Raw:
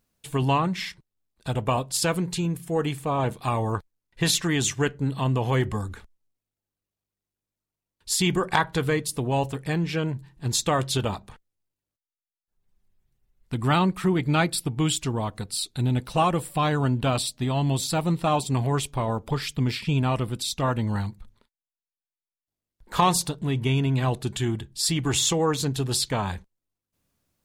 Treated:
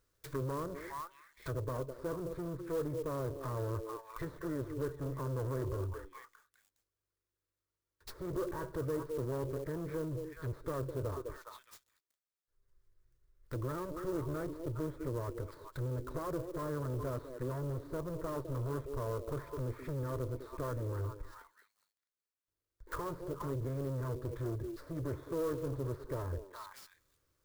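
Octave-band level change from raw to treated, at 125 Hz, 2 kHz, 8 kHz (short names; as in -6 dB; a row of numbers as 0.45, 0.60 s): -13.0, -19.5, -27.5 dB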